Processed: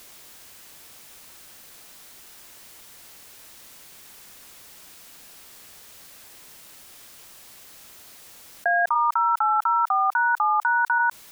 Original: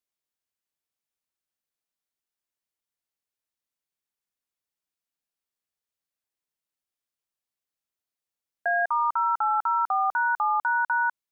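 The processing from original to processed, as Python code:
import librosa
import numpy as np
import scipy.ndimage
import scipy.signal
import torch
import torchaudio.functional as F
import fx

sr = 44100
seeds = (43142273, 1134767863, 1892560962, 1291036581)

y = fx.highpass(x, sr, hz=750.0, slope=24, at=(8.94, 10.98), fade=0.02)
y = fx.env_flatten(y, sr, amount_pct=70)
y = F.gain(torch.from_numpy(y), 3.0).numpy()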